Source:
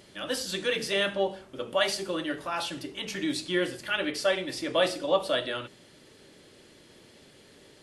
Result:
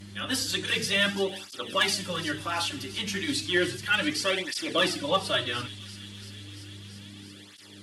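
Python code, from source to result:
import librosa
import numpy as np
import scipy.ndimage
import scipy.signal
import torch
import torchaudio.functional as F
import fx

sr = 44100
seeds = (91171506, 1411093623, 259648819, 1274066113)

p1 = fx.peak_eq(x, sr, hz=560.0, db=-9.5, octaves=1.1)
p2 = fx.clip_asym(p1, sr, top_db=-20.0, bottom_db=-19.0)
p3 = fx.dmg_buzz(p2, sr, base_hz=100.0, harmonics=3, level_db=-51.0, tilt_db=-4, odd_only=False)
p4 = p3 + fx.echo_wet_highpass(p3, sr, ms=340, feedback_pct=81, hz=3500.0, wet_db=-13.0, dry=0)
p5 = fx.flanger_cancel(p4, sr, hz=0.33, depth_ms=7.5)
y = F.gain(torch.from_numpy(p5), 7.5).numpy()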